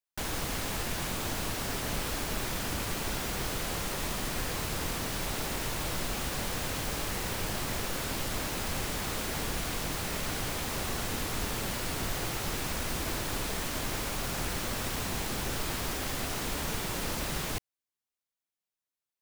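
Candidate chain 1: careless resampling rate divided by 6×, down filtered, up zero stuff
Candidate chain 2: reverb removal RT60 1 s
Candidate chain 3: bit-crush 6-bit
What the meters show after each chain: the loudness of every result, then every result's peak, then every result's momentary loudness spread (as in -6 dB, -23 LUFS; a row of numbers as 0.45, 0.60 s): -24.0, -35.5, -31.5 LUFS; -6.0, -21.5, -20.5 dBFS; 1, 0, 0 LU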